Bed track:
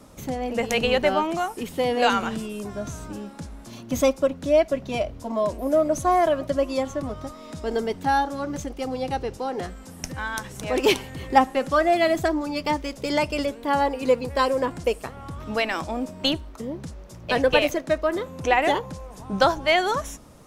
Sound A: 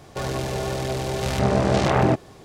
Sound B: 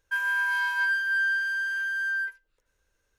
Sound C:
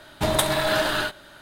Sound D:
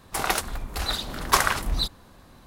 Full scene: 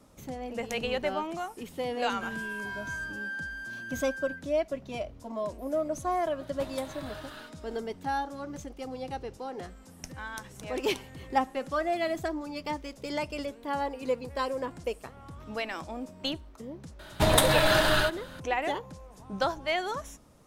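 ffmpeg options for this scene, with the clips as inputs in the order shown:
-filter_complex "[3:a]asplit=2[s0][s1];[0:a]volume=0.335[s2];[s0]acompressor=threshold=0.01:ratio=2.5:attack=84:release=557:knee=1:detection=peak[s3];[s1]asubboost=boost=6.5:cutoff=160[s4];[2:a]atrim=end=3.18,asetpts=PTS-STARTPTS,volume=0.266,afade=t=in:d=0.004:c=hsin,afade=t=out:st=3.176:d=0.004:c=hsin,adelay=2100[s5];[s3]atrim=end=1.41,asetpts=PTS-STARTPTS,volume=0.316,afade=t=in:d=0.004:c=hsin,afade=t=out:st=1.406:d=0.004:c=hsin,adelay=6390[s6];[s4]atrim=end=1.41,asetpts=PTS-STARTPTS,volume=0.944,afade=t=in:d=0.004:c=hsin,afade=t=out:st=1.406:d=0.004:c=hsin,adelay=16990[s7];[s2][s5][s6][s7]amix=inputs=4:normalize=0"

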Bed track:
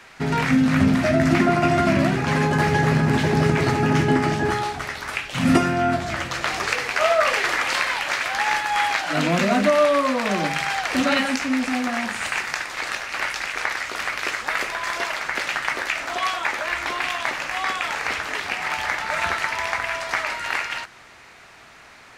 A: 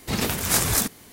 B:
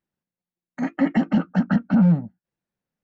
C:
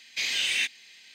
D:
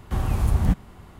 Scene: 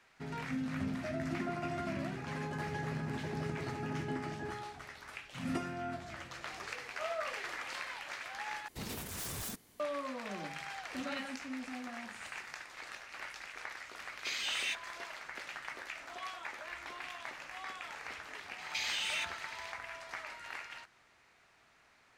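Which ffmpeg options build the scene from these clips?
-filter_complex "[3:a]asplit=2[s0][s1];[0:a]volume=0.106[s2];[1:a]aeval=exprs='0.1*(abs(mod(val(0)/0.1+3,4)-2)-1)':c=same[s3];[s1]acompressor=threshold=0.0251:ratio=6:attack=3.2:release=140:knee=1:detection=peak[s4];[s2]asplit=2[s5][s6];[s5]atrim=end=8.684[s7];[s3]atrim=end=1.12,asetpts=PTS-STARTPTS,volume=0.168[s8];[s6]atrim=start=9.796[s9];[s0]atrim=end=1.14,asetpts=PTS-STARTPTS,volume=0.335,afade=t=in:d=0.004:c=hsin,afade=t=out:st=1.136:d=0.004:c=hsin,adelay=14080[s10];[s4]atrim=end=1.14,asetpts=PTS-STARTPTS,volume=0.891,afade=t=in:d=0.004:c=hsin,afade=t=out:st=1.136:d=0.004:c=hsin,adelay=18580[s11];[s7][s8]acrossfade=d=0.004:c1=hsin:c2=hsin[s12];[s12][s9]acrossfade=d=0.004:c1=hsin:c2=hsin[s13];[s13][s10][s11]amix=inputs=3:normalize=0"

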